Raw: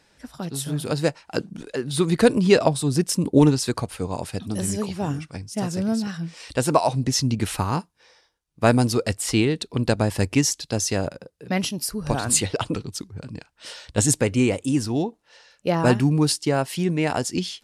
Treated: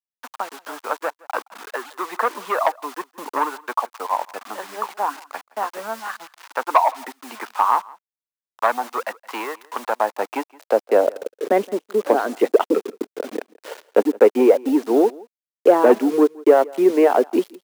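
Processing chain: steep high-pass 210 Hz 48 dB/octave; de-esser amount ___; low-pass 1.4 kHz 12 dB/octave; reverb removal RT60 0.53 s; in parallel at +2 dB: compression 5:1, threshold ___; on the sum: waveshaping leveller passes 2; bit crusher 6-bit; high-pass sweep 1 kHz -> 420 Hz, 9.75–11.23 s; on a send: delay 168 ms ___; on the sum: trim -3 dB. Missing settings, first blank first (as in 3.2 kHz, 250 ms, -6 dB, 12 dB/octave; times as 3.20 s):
65%, -32 dBFS, -23.5 dB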